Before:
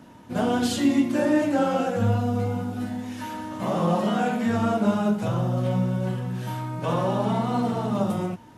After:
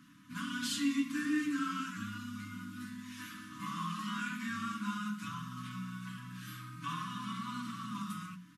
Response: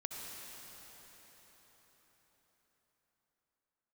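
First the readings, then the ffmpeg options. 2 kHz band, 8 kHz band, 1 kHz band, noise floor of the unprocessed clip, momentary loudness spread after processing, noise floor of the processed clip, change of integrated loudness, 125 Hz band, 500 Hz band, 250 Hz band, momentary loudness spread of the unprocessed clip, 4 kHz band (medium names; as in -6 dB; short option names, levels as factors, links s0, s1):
-5.5 dB, -6.0 dB, -13.0 dB, -48 dBFS, 12 LU, -53 dBFS, -14.0 dB, -19.0 dB, under -30 dB, -13.5 dB, 9 LU, -6.0 dB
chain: -filter_complex "[0:a]bandreject=f=60:t=h:w=6,bandreject=f=120:t=h:w=6,bandreject=f=180:t=h:w=6,aecho=1:1:6.2:0.44,afftfilt=real='re*(1-between(b*sr/4096,310,980))':imag='im*(1-between(b*sr/4096,310,980))':win_size=4096:overlap=0.75,lowshelf=f=130:g=-11,acrossover=split=240|2300[s0][s1][s2];[s0]acompressor=threshold=0.00891:ratio=6[s3];[s3][s1][s2]amix=inputs=3:normalize=0,volume=0.473"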